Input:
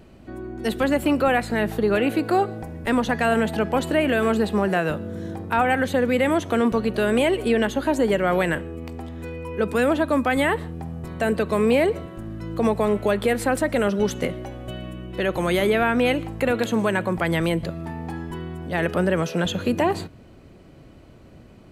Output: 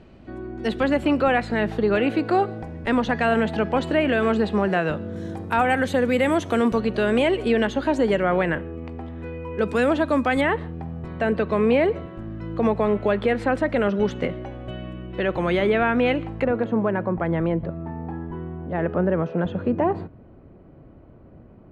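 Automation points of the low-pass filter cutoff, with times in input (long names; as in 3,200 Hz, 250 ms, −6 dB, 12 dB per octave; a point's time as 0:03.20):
4,500 Hz
from 0:05.16 10,000 Hz
from 0:06.80 5,300 Hz
from 0:08.23 2,500 Hz
from 0:09.59 6,600 Hz
from 0:10.41 3,000 Hz
from 0:16.44 1,200 Hz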